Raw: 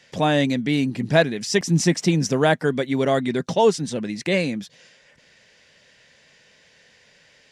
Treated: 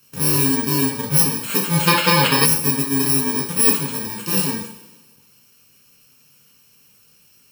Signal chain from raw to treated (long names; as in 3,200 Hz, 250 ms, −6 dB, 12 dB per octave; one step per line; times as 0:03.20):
samples in bit-reversed order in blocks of 64 samples
coupled-rooms reverb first 0.49 s, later 1.5 s, from −17 dB, DRR −2 dB
gain on a spectral selection 0:01.88–0:02.45, 440–5,400 Hz +10 dB
level −2.5 dB